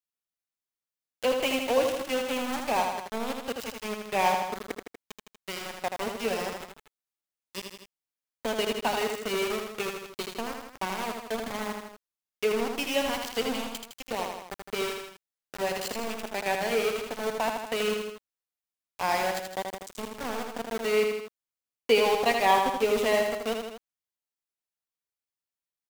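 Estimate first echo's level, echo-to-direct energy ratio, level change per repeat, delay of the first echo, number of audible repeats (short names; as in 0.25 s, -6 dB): -5.0 dB, -3.5 dB, -4.5 dB, 80 ms, 3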